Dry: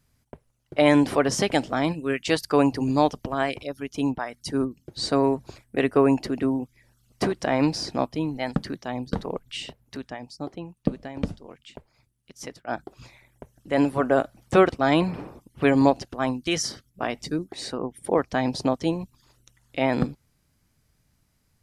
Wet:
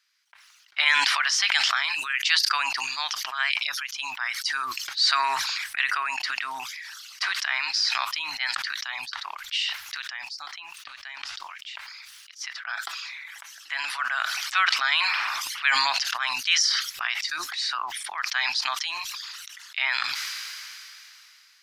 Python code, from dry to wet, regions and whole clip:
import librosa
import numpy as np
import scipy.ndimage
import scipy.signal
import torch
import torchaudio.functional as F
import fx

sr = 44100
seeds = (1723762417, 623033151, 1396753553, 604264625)

y = fx.chain(x, sr, fx.highpass(hz=210.0, slope=12),
    fx.comb(ms=6.0, depth=0.32),
    fx.band_squash(depth_pct=70), at=(12.54, 13.84))
y = scipy.signal.sosfilt(scipy.signal.cheby2(4, 50, 520.0, 'highpass', fs=sr, output='sos'), y)
y = fx.high_shelf_res(y, sr, hz=6800.0, db=-10.5, q=1.5)
y = fx.sustainer(y, sr, db_per_s=20.0)
y = y * 10.0 ** (5.5 / 20.0)